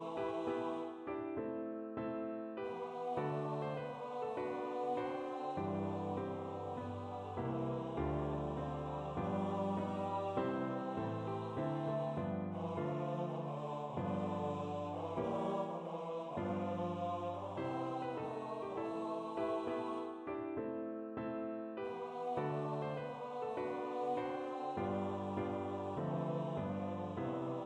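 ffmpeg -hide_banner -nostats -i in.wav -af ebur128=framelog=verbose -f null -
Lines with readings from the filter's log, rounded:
Integrated loudness:
  I:         -40.8 LUFS
  Threshold: -50.7 LUFS
Loudness range:
  LRA:         2.4 LU
  Threshold: -60.7 LUFS
  LRA low:   -41.9 LUFS
  LRA high:  -39.5 LUFS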